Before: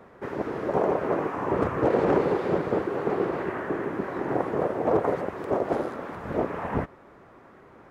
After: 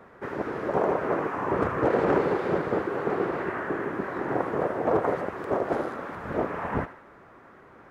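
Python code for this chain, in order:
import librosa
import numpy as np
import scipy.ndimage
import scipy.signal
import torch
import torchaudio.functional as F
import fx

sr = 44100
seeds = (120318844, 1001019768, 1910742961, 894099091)

p1 = fx.peak_eq(x, sr, hz=1500.0, db=4.5, octaves=1.1)
p2 = p1 + fx.echo_thinned(p1, sr, ms=76, feedback_pct=55, hz=760.0, wet_db=-12, dry=0)
y = F.gain(torch.from_numpy(p2), -1.5).numpy()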